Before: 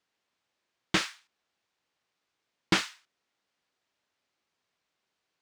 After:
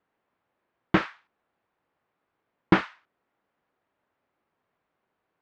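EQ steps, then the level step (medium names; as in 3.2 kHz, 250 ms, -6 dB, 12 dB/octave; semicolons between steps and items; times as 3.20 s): low-pass 1.4 kHz 12 dB/octave; +8.0 dB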